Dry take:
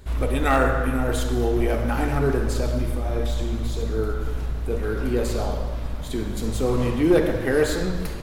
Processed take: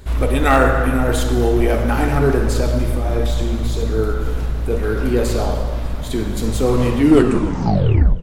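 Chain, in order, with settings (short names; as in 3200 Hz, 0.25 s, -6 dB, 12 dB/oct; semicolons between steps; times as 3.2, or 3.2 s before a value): tape stop at the end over 1.26 s; frequency-shifting echo 0.301 s, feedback 48%, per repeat +57 Hz, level -20.5 dB; gain +6 dB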